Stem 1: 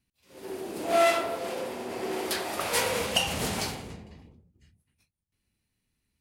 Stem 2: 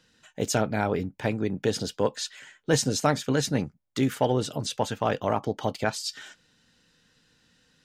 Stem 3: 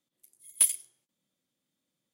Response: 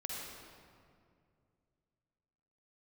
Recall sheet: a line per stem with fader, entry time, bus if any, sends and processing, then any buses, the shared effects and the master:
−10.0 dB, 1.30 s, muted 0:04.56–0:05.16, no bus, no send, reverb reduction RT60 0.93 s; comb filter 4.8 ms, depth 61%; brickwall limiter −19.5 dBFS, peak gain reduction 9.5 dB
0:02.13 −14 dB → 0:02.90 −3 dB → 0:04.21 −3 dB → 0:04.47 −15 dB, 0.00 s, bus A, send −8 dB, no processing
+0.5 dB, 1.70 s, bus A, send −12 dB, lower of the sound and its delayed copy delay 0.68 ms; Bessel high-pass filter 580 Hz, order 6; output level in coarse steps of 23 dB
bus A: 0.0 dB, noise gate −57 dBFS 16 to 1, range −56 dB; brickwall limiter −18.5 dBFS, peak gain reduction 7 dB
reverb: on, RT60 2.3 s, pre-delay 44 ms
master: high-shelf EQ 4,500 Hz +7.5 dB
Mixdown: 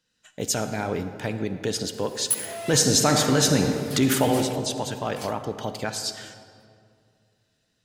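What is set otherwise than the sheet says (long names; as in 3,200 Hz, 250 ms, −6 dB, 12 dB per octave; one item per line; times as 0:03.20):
stem 1: entry 1.30 s → 1.60 s
stem 2 −14.0 dB → −2.5 dB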